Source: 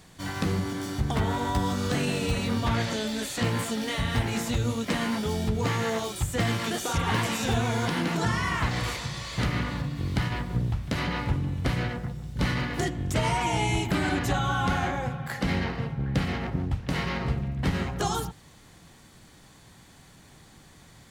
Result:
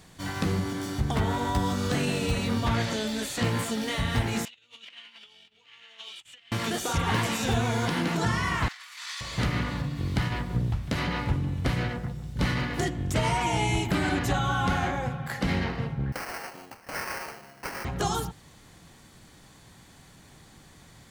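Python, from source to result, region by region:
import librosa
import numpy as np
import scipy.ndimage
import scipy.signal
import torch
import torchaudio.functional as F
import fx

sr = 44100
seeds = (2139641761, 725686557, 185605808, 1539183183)

y = fx.chain(x, sr, fx.over_compress(threshold_db=-32.0, ratio=-0.5),
    fx.bandpass_q(hz=2900.0, q=4.6), at=(4.45, 6.52))
y = fx.chain(y, sr, fx.highpass(hz=1200.0, slope=24),
    fx.over_compress(threshold_db=-40.0, ratio=-0.5), at=(8.68, 9.21))
y = fx.chain(y, sr, fx.highpass(hz=710.0, slope=12),
    fx.sample_hold(seeds[0], rate_hz=3600.0, jitter_pct=0), at=(16.12, 17.85))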